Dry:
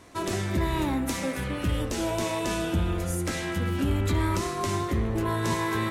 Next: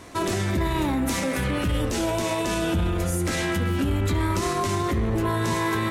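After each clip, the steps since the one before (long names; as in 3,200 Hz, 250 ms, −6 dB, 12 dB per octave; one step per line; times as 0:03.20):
brickwall limiter −24 dBFS, peak gain reduction 7.5 dB
level +7.5 dB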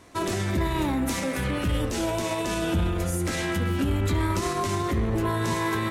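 expander for the loud parts 1.5 to 1, over −36 dBFS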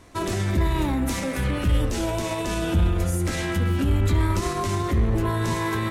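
low-shelf EQ 73 Hz +11.5 dB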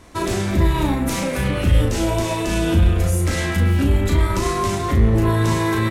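double-tracking delay 36 ms −4.5 dB
level +3.5 dB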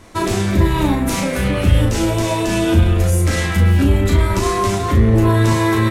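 flanger 0.36 Hz, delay 8.9 ms, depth 1.9 ms, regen −44%
level +7 dB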